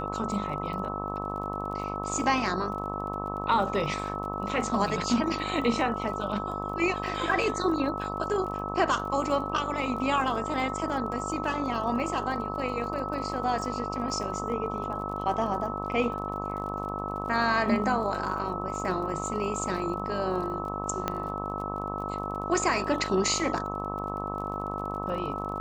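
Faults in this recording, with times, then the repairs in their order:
mains buzz 50 Hz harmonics 26 −35 dBFS
surface crackle 33 per second −38 dBFS
whistle 1,300 Hz −36 dBFS
0:21.08: click −13 dBFS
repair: click removal
notch filter 1,300 Hz, Q 30
hum removal 50 Hz, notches 26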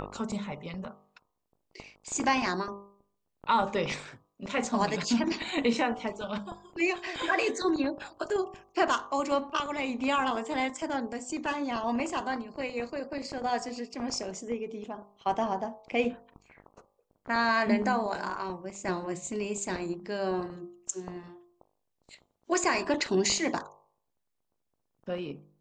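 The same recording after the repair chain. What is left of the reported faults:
none of them is left

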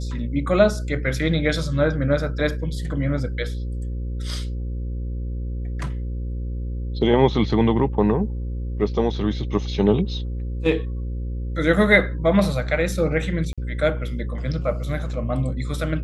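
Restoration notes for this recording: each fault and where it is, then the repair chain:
mains buzz 60 Hz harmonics 9 −27 dBFS
0:13.53–0:13.58: drop-out 46 ms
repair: hum removal 60 Hz, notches 9
repair the gap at 0:13.53, 46 ms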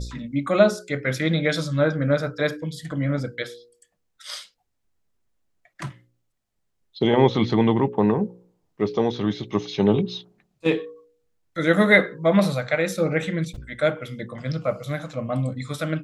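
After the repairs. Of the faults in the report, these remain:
none of them is left

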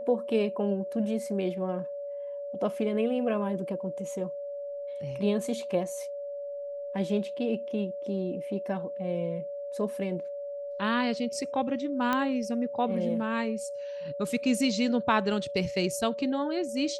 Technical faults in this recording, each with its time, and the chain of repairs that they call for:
whistle 570 Hz −34 dBFS
0:12.13: click −14 dBFS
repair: click removal
notch filter 570 Hz, Q 30

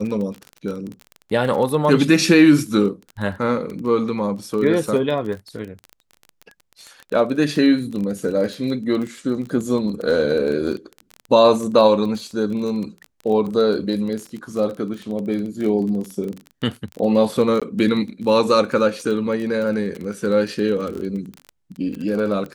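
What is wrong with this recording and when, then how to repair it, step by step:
surface crackle 24 per second −26 dBFS
0:17.60–0:17.62: drop-out 16 ms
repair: click removal
repair the gap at 0:17.60, 16 ms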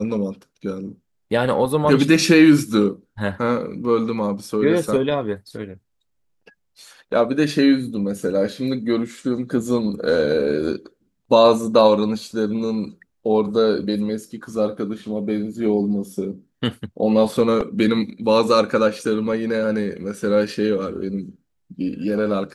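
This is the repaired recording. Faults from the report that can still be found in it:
none of them is left

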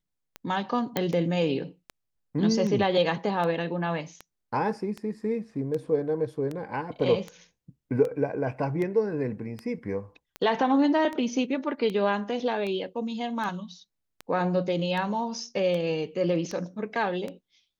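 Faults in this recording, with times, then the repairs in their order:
scratch tick 78 rpm −21 dBFS
0:00.97: click −11 dBFS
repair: click removal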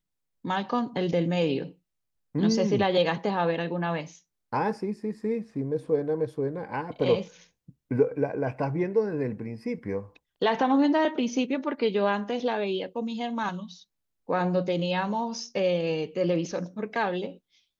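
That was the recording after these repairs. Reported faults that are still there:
none of them is left

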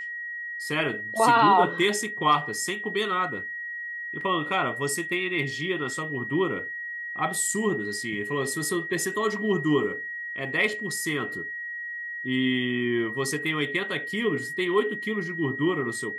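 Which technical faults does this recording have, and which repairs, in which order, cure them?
whistle 1,900 Hz −32 dBFS
0:04.21: drop-out 2.6 ms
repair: notch filter 1,900 Hz, Q 30
repair the gap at 0:04.21, 2.6 ms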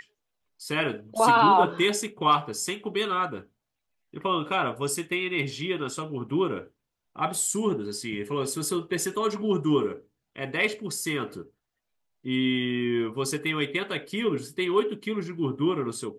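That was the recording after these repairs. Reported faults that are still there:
none of them is left

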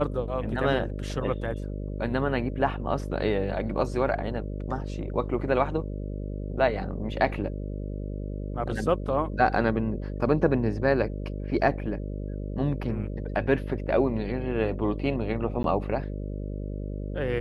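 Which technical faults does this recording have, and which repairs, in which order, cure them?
mains buzz 50 Hz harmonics 12 −33 dBFS
0:15.63–0:15.64: drop-out 12 ms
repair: hum removal 50 Hz, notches 12
repair the gap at 0:15.63, 12 ms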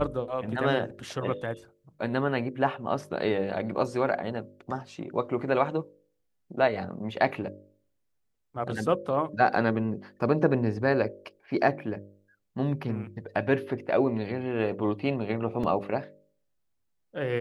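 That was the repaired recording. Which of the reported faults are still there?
none of them is left

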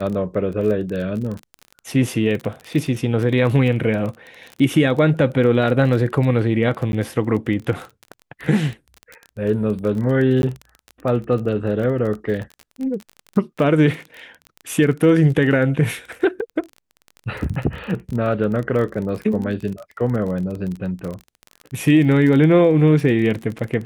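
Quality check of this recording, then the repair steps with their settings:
surface crackle 25 per second −26 dBFS
0:06.92–0:06.93: drop-out 11 ms
0:10.42–0:10.43: drop-out 11 ms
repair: click removal
repair the gap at 0:06.92, 11 ms
repair the gap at 0:10.42, 11 ms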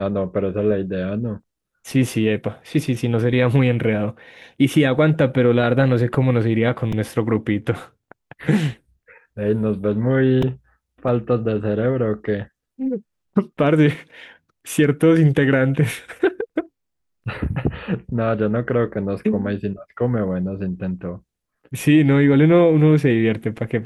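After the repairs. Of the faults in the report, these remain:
none of them is left

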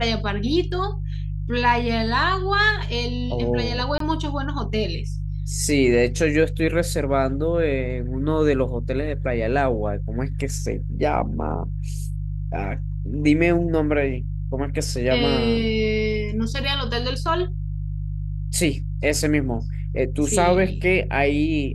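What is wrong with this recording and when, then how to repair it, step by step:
mains hum 50 Hz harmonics 3 −27 dBFS
0:03.98–0:04.00: drop-out 23 ms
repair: hum removal 50 Hz, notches 3
repair the gap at 0:03.98, 23 ms

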